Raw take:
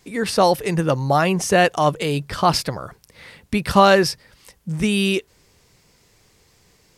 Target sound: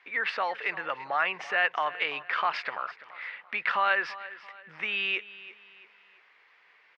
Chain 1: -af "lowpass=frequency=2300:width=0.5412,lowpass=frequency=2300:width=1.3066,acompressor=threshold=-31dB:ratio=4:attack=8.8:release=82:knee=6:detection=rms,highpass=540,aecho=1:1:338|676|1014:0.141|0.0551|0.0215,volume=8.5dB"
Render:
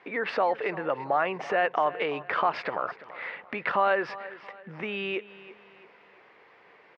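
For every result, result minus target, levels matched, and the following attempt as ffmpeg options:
500 Hz band +8.5 dB; downward compressor: peak gain reduction +7 dB
-af "lowpass=frequency=2300:width=0.5412,lowpass=frequency=2300:width=1.3066,acompressor=threshold=-31dB:ratio=4:attack=8.8:release=82:knee=6:detection=rms,highpass=1600,aecho=1:1:338|676|1014:0.141|0.0551|0.0215,volume=8.5dB"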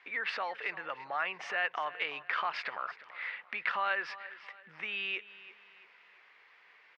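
downward compressor: peak gain reduction +7 dB
-af "lowpass=frequency=2300:width=0.5412,lowpass=frequency=2300:width=1.3066,acompressor=threshold=-22dB:ratio=4:attack=8.8:release=82:knee=6:detection=rms,highpass=1600,aecho=1:1:338|676|1014:0.141|0.0551|0.0215,volume=8.5dB"

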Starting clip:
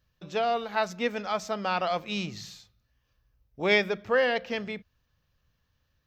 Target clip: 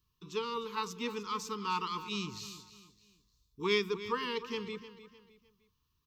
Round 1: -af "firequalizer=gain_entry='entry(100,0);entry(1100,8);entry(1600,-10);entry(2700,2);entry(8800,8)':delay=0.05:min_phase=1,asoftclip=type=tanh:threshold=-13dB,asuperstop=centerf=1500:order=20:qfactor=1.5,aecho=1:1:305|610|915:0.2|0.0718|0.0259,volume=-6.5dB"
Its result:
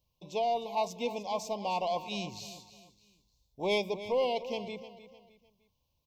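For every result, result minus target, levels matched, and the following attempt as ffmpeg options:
soft clipping: distortion +16 dB; 2,000 Hz band −5.0 dB
-af "firequalizer=gain_entry='entry(100,0);entry(1100,8);entry(1600,-10);entry(2700,2);entry(8800,8)':delay=0.05:min_phase=1,asoftclip=type=tanh:threshold=-4dB,asuperstop=centerf=1500:order=20:qfactor=1.5,aecho=1:1:305|610|915:0.2|0.0718|0.0259,volume=-6.5dB"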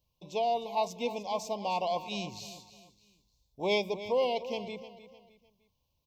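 2,000 Hz band −5.0 dB
-af "firequalizer=gain_entry='entry(100,0);entry(1100,8);entry(1600,-10);entry(2700,2);entry(8800,8)':delay=0.05:min_phase=1,asoftclip=type=tanh:threshold=-4dB,asuperstop=centerf=650:order=20:qfactor=1.5,aecho=1:1:305|610|915:0.2|0.0718|0.0259,volume=-6.5dB"

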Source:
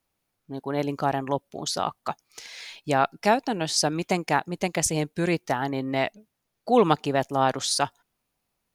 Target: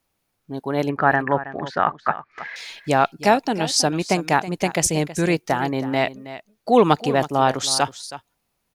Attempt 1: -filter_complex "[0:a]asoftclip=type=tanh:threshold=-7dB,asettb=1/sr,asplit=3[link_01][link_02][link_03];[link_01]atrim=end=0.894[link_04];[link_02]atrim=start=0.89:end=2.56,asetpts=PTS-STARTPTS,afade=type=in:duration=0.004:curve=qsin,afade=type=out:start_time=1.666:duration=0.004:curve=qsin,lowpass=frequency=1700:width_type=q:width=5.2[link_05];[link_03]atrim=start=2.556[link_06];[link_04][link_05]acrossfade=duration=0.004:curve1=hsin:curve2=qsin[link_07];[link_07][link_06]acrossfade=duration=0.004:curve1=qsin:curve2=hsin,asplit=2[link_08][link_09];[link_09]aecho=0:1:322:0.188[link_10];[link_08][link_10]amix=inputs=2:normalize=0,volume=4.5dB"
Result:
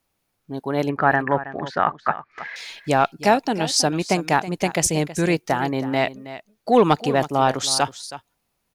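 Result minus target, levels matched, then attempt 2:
soft clipping: distortion +11 dB
-filter_complex "[0:a]asoftclip=type=tanh:threshold=-1dB,asettb=1/sr,asplit=3[link_01][link_02][link_03];[link_01]atrim=end=0.894[link_04];[link_02]atrim=start=0.89:end=2.56,asetpts=PTS-STARTPTS,afade=type=in:duration=0.004:curve=qsin,afade=type=out:start_time=1.666:duration=0.004:curve=qsin,lowpass=frequency=1700:width_type=q:width=5.2[link_05];[link_03]atrim=start=2.556[link_06];[link_04][link_05]acrossfade=duration=0.004:curve1=hsin:curve2=qsin[link_07];[link_07][link_06]acrossfade=duration=0.004:curve1=qsin:curve2=hsin,asplit=2[link_08][link_09];[link_09]aecho=0:1:322:0.188[link_10];[link_08][link_10]amix=inputs=2:normalize=0,volume=4.5dB"

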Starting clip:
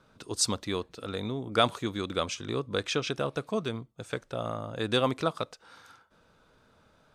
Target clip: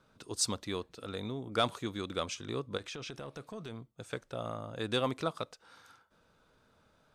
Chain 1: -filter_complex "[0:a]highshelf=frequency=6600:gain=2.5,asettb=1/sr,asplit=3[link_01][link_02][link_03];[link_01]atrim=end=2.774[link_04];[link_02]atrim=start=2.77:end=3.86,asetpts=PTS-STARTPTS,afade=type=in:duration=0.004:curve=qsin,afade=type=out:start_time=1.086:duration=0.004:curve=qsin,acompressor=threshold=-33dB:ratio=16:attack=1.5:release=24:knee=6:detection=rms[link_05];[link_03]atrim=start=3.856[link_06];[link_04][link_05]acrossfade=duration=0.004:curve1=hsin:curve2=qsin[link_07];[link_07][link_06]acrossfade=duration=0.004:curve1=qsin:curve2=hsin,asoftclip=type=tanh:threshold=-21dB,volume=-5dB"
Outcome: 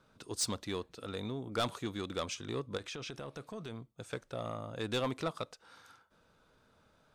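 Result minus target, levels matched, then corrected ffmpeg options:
soft clipping: distortion +13 dB
-filter_complex "[0:a]highshelf=frequency=6600:gain=2.5,asettb=1/sr,asplit=3[link_01][link_02][link_03];[link_01]atrim=end=2.774[link_04];[link_02]atrim=start=2.77:end=3.86,asetpts=PTS-STARTPTS,afade=type=in:duration=0.004:curve=qsin,afade=type=out:start_time=1.086:duration=0.004:curve=qsin,acompressor=threshold=-33dB:ratio=16:attack=1.5:release=24:knee=6:detection=rms[link_05];[link_03]atrim=start=3.856[link_06];[link_04][link_05]acrossfade=duration=0.004:curve1=hsin:curve2=qsin[link_07];[link_07][link_06]acrossfade=duration=0.004:curve1=qsin:curve2=hsin,asoftclip=type=tanh:threshold=-10dB,volume=-5dB"

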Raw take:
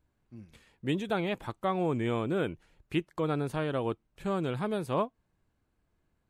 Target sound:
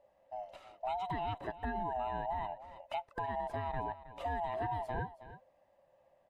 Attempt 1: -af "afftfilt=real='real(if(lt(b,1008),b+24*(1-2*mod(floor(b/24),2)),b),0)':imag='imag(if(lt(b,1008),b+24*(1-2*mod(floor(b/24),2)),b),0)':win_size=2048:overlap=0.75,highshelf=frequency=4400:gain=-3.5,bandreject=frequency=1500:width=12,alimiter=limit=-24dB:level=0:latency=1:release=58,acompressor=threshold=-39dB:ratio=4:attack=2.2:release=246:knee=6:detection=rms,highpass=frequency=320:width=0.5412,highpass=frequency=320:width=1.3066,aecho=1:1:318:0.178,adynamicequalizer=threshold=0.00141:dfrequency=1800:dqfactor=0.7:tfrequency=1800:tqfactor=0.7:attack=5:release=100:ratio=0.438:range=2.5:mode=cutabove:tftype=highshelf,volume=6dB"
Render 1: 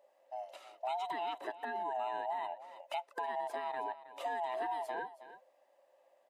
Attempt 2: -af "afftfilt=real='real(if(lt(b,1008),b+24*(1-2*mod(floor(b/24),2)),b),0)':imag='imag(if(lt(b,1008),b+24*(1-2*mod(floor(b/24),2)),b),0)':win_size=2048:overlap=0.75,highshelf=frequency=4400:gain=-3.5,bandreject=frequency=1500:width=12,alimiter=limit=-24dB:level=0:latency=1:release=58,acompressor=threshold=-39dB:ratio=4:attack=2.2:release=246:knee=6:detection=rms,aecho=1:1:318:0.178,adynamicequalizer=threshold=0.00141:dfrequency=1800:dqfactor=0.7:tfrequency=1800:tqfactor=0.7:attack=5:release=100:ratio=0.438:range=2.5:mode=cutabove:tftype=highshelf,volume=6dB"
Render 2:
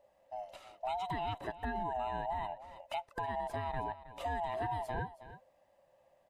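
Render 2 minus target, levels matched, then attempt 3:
4,000 Hz band +3.0 dB
-af "afftfilt=real='real(if(lt(b,1008),b+24*(1-2*mod(floor(b/24),2)),b),0)':imag='imag(if(lt(b,1008),b+24*(1-2*mod(floor(b/24),2)),b),0)':win_size=2048:overlap=0.75,highshelf=frequency=4400:gain=-14,bandreject=frequency=1500:width=12,alimiter=limit=-24dB:level=0:latency=1:release=58,acompressor=threshold=-39dB:ratio=4:attack=2.2:release=246:knee=6:detection=rms,aecho=1:1:318:0.178,adynamicequalizer=threshold=0.00141:dfrequency=1800:dqfactor=0.7:tfrequency=1800:tqfactor=0.7:attack=5:release=100:ratio=0.438:range=2.5:mode=cutabove:tftype=highshelf,volume=6dB"

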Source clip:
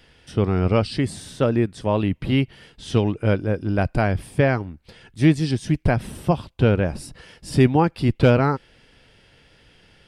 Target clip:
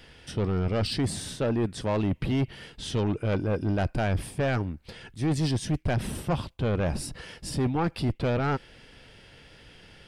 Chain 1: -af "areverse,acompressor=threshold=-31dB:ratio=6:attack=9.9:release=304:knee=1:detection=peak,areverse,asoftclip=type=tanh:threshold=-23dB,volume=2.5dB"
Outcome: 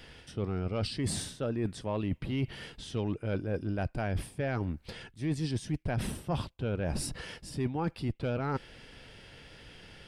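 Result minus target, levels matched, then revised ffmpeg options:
downward compressor: peak gain reduction +9.5 dB
-af "areverse,acompressor=threshold=-19.5dB:ratio=6:attack=9.9:release=304:knee=1:detection=peak,areverse,asoftclip=type=tanh:threshold=-23dB,volume=2.5dB"

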